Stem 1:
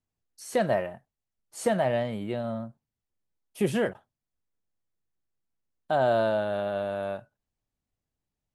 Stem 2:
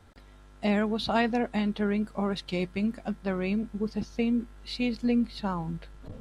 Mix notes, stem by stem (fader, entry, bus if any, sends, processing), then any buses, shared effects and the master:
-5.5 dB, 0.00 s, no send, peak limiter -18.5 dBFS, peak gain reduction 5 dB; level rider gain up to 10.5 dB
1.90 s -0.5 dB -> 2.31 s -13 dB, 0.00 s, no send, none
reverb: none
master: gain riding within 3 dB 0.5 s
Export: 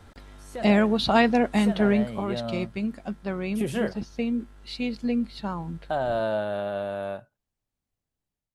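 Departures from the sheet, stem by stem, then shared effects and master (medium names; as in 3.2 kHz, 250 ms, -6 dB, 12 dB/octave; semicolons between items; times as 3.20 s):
stem 1 -5.5 dB -> -13.5 dB; stem 2 -0.5 dB -> +9.0 dB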